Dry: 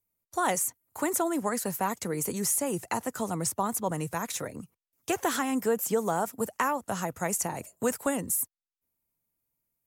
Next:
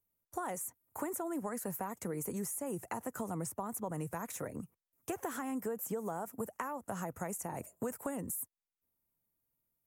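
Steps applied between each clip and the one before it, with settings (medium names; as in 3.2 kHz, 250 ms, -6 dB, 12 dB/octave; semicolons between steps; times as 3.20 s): in parallel at -2.5 dB: peak limiter -24 dBFS, peak gain reduction 8 dB; on the sum: compression, threshold -28 dBFS, peak gain reduction 9 dB; peaking EQ 4.1 kHz -13.5 dB 1.4 oct; trim -6 dB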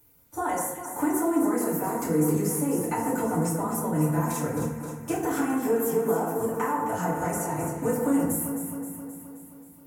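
upward compressor, threshold -55 dBFS; on a send: echo whose repeats swap between lows and highs 132 ms, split 1.9 kHz, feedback 77%, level -5.5 dB; on the sum: FDN reverb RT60 0.62 s, low-frequency decay 1.4×, high-frequency decay 0.7×, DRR -9 dB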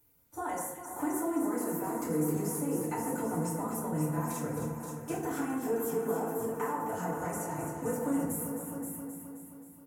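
delay 528 ms -10.5 dB; trim -7.5 dB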